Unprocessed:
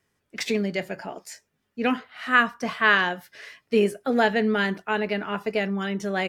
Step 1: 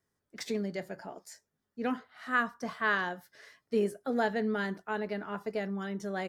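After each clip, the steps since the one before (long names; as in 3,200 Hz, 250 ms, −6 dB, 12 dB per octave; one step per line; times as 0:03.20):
parametric band 2,600 Hz −10 dB 0.66 octaves
level −8 dB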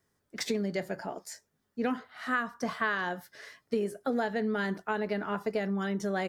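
downward compressor 10 to 1, threshold −32 dBFS, peak gain reduction 10 dB
level +6 dB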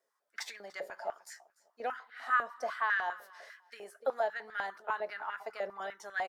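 repeating echo 293 ms, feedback 24%, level −21 dB
high-pass on a step sequencer 10 Hz 550–1,700 Hz
level −7.5 dB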